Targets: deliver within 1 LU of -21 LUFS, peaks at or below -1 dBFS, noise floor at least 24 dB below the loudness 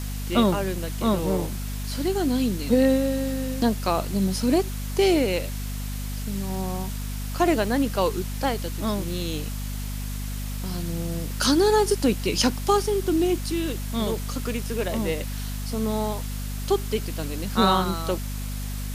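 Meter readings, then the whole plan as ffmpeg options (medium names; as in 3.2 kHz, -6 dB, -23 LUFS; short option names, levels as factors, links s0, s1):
hum 50 Hz; highest harmonic 250 Hz; hum level -28 dBFS; noise floor -31 dBFS; noise floor target -50 dBFS; loudness -25.5 LUFS; peak level -6.5 dBFS; loudness target -21.0 LUFS
-> -af "bandreject=f=50:t=h:w=6,bandreject=f=100:t=h:w=6,bandreject=f=150:t=h:w=6,bandreject=f=200:t=h:w=6,bandreject=f=250:t=h:w=6"
-af "afftdn=nr=19:nf=-31"
-af "volume=1.68"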